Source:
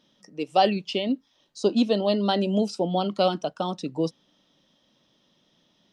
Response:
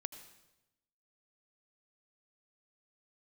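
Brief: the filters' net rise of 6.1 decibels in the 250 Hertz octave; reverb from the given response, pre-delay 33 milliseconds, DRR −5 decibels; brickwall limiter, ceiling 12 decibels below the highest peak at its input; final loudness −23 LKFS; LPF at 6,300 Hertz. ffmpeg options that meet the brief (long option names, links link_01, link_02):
-filter_complex "[0:a]lowpass=6300,equalizer=frequency=250:width_type=o:gain=7.5,alimiter=limit=-16.5dB:level=0:latency=1,asplit=2[link_01][link_02];[1:a]atrim=start_sample=2205,adelay=33[link_03];[link_02][link_03]afir=irnorm=-1:irlink=0,volume=7.5dB[link_04];[link_01][link_04]amix=inputs=2:normalize=0,volume=-3.5dB"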